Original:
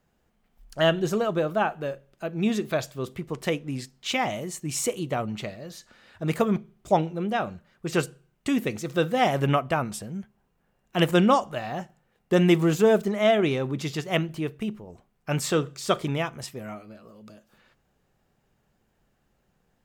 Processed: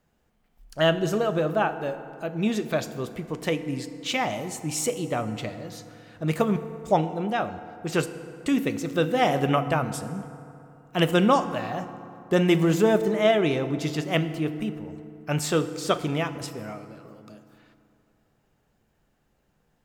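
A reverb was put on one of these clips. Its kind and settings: FDN reverb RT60 2.8 s, high-frequency decay 0.5×, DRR 10.5 dB

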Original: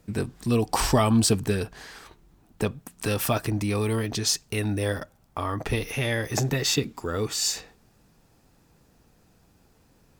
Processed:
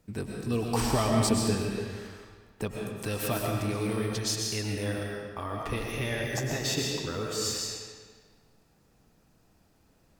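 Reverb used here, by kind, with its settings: algorithmic reverb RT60 1.6 s, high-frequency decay 0.85×, pre-delay 80 ms, DRR -0.5 dB; trim -7 dB

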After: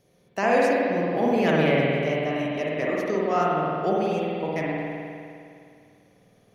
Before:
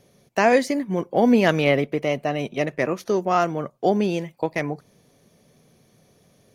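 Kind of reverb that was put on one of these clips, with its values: spring tank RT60 2.4 s, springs 51 ms, chirp 80 ms, DRR -5 dB; trim -7.5 dB

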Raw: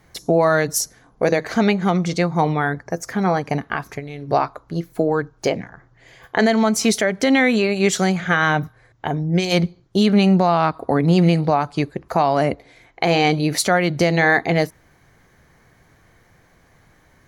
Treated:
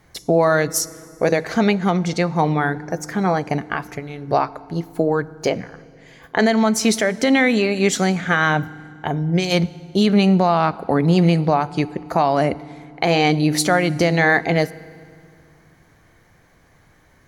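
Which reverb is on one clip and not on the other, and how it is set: FDN reverb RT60 2.3 s, low-frequency decay 1.55×, high-frequency decay 0.8×, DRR 18.5 dB

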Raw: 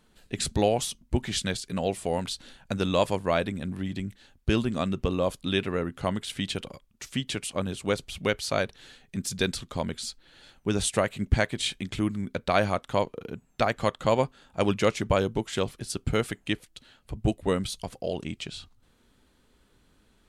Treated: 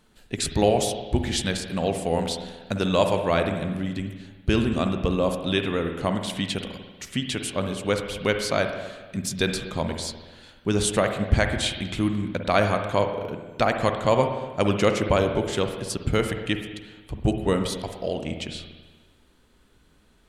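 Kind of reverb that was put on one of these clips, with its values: spring tank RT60 1.3 s, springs 48/60 ms, chirp 65 ms, DRR 5.5 dB; trim +2.5 dB

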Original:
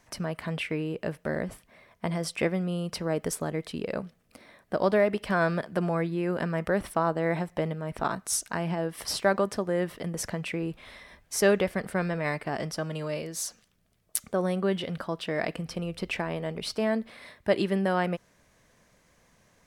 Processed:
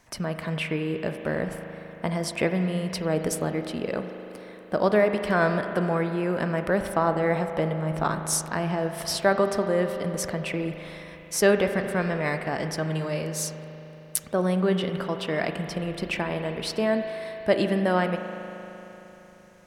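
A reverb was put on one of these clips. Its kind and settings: spring tank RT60 3.7 s, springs 38 ms, chirp 55 ms, DRR 6.5 dB; trim +2.5 dB

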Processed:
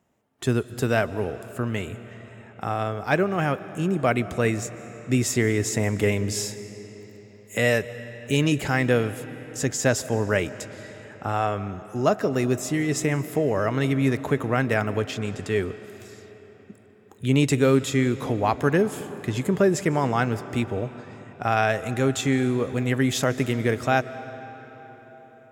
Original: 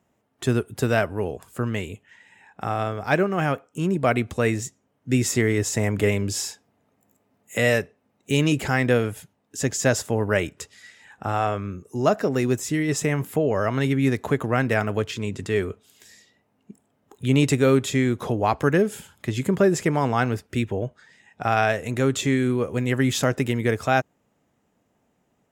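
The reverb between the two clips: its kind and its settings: algorithmic reverb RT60 4.7 s, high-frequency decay 0.7×, pre-delay 110 ms, DRR 14 dB; trim -1 dB

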